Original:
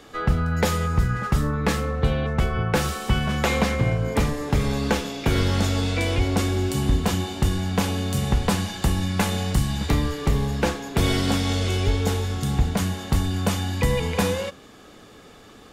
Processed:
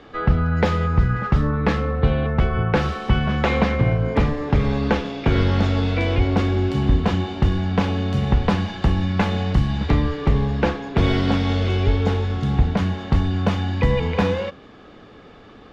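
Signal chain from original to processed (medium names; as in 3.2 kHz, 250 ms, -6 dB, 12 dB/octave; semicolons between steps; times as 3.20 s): distance through air 240 m; trim +3.5 dB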